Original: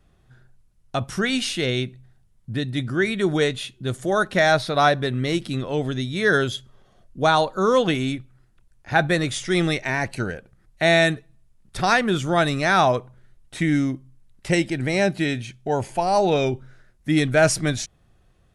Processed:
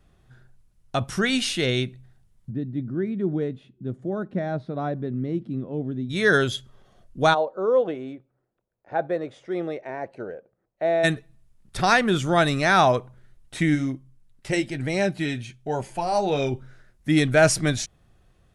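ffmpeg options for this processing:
ffmpeg -i in.wav -filter_complex "[0:a]asplit=3[link_01][link_02][link_03];[link_01]afade=type=out:start_time=2.5:duration=0.02[link_04];[link_02]bandpass=frequency=220:width_type=q:width=1.3,afade=type=in:start_time=2.5:duration=0.02,afade=type=out:start_time=6.09:duration=0.02[link_05];[link_03]afade=type=in:start_time=6.09:duration=0.02[link_06];[link_04][link_05][link_06]amix=inputs=3:normalize=0,asplit=3[link_07][link_08][link_09];[link_07]afade=type=out:start_time=7.33:duration=0.02[link_10];[link_08]bandpass=frequency=530:width_type=q:width=2,afade=type=in:start_time=7.33:duration=0.02,afade=type=out:start_time=11.03:duration=0.02[link_11];[link_09]afade=type=in:start_time=11.03:duration=0.02[link_12];[link_10][link_11][link_12]amix=inputs=3:normalize=0,asplit=3[link_13][link_14][link_15];[link_13]afade=type=out:start_time=13.74:duration=0.02[link_16];[link_14]flanger=delay=4.9:depth=4.3:regen=-43:speed=1.2:shape=triangular,afade=type=in:start_time=13.74:duration=0.02,afade=type=out:start_time=16.5:duration=0.02[link_17];[link_15]afade=type=in:start_time=16.5:duration=0.02[link_18];[link_16][link_17][link_18]amix=inputs=3:normalize=0" out.wav

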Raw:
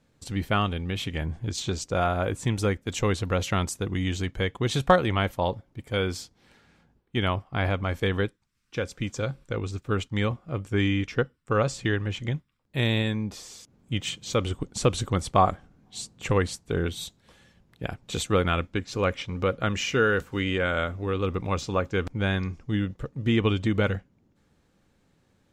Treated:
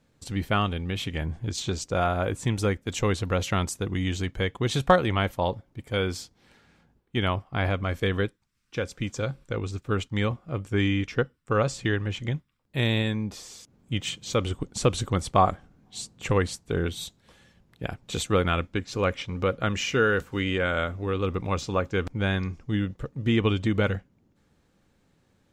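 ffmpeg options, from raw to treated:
ffmpeg -i in.wav -filter_complex "[0:a]asettb=1/sr,asplit=3[link_01][link_02][link_03];[link_01]atrim=end=7.724[link_04];[link_02]atrim=start=7.72:end=8.26,asetpts=PTS-STARTPTS,afade=type=in:duration=0.004:curve=qsin,afade=type=out:start_time=0.536:duration=0.004:curve=qsin,bandreject=frequency=870:width=6.4[link_05];[link_03]atrim=start=8.256[link_06];[link_04][link_05]acrossfade=duration=0.004:curve1=hsin:curve2=qsin[link_07];[link_07][link_06]acrossfade=duration=0.004:curve1=qsin:curve2=hsin" out.wav

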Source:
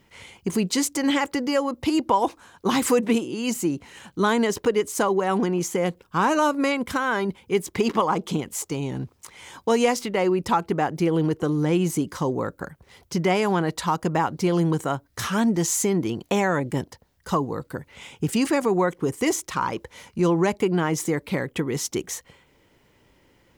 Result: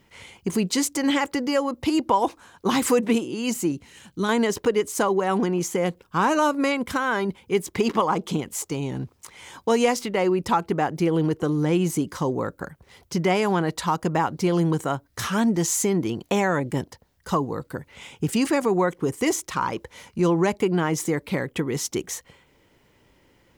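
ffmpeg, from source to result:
ffmpeg -i in.wav -filter_complex "[0:a]asettb=1/sr,asplit=3[link_01][link_02][link_03];[link_01]atrim=end=3.724[link_04];[link_02]atrim=start=3.72:end=4.29,asetpts=PTS-STARTPTS,afade=type=in:duration=0.004:curve=qsin,afade=type=out:start_time=0.566:duration=0.004:curve=qsin,equalizer=frequency=900:width_type=o:width=2.5:gain=-8[link_05];[link_03]atrim=start=4.286[link_06];[link_04][link_05]acrossfade=duration=0.004:curve1=hsin:curve2=qsin[link_07];[link_07][link_06]acrossfade=duration=0.004:curve1=qsin:curve2=hsin" out.wav

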